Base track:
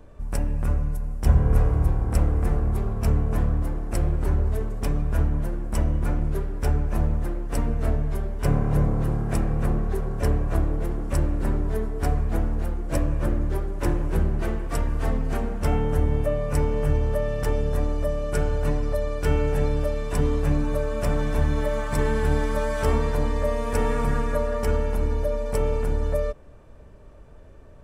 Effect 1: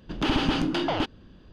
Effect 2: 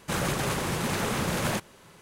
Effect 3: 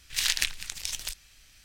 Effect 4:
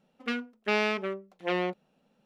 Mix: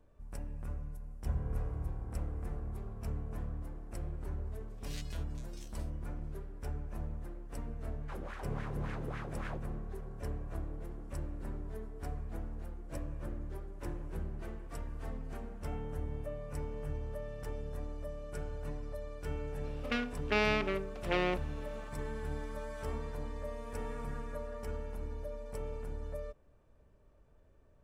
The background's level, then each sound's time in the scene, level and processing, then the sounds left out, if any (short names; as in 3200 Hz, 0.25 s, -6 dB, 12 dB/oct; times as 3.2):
base track -17 dB
4.68 add 3 -13.5 dB + stepped resonator 9 Hz 69–570 Hz
8 add 2 -9 dB + wah 3.6 Hz 270–1800 Hz, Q 2.2
19.64 add 4 -4 dB + per-bin compression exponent 0.6
not used: 1